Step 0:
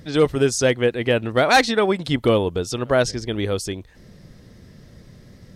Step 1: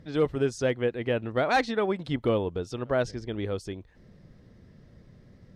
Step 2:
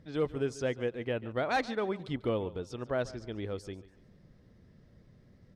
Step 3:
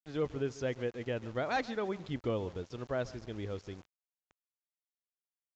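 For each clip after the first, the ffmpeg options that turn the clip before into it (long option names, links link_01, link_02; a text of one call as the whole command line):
ffmpeg -i in.wav -af "lowpass=frequency=2100:poles=1,volume=-7.5dB" out.wav
ffmpeg -i in.wav -af "aecho=1:1:143|286|429:0.126|0.0441|0.0154,volume=-6dB" out.wav
ffmpeg -i in.wav -af "aeval=exprs='val(0)*gte(abs(val(0)),0.00447)':channel_layout=same,aresample=16000,aresample=44100,equalizer=frequency=76:width_type=o:width=1.6:gain=3.5,volume=-3dB" out.wav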